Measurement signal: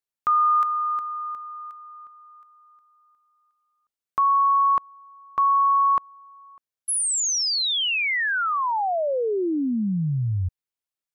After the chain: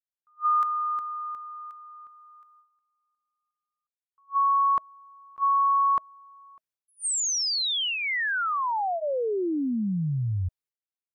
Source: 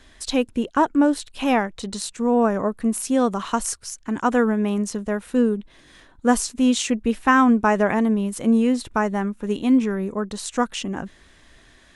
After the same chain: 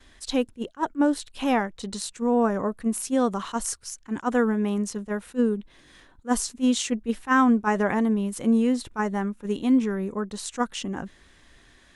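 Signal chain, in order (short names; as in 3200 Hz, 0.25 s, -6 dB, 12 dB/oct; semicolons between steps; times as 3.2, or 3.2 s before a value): dynamic EQ 2500 Hz, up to -4 dB, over -48 dBFS, Q 6; gate with hold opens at -46 dBFS, hold 0.156 s, range -14 dB; notch 640 Hz, Q 16; attack slew limiter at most 430 dB/s; gain -3 dB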